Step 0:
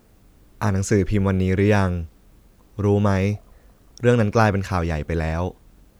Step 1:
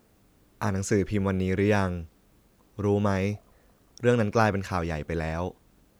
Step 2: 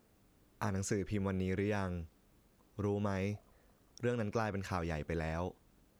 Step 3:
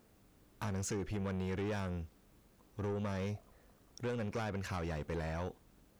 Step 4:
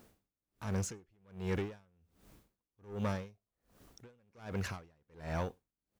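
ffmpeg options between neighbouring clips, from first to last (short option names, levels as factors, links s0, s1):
-af "lowshelf=f=69:g=-11.5,volume=0.596"
-af "acompressor=threshold=0.0562:ratio=5,volume=0.473"
-af "asoftclip=type=tanh:threshold=0.0168,volume=1.33"
-filter_complex "[0:a]acrusher=bits=11:mix=0:aa=0.000001,asplit=2[s0][s1];[s1]adelay=105,volume=0.0708,highshelf=f=4000:g=-2.36[s2];[s0][s2]amix=inputs=2:normalize=0,aeval=exprs='val(0)*pow(10,-38*(0.5-0.5*cos(2*PI*1.3*n/s))/20)':c=same,volume=1.78"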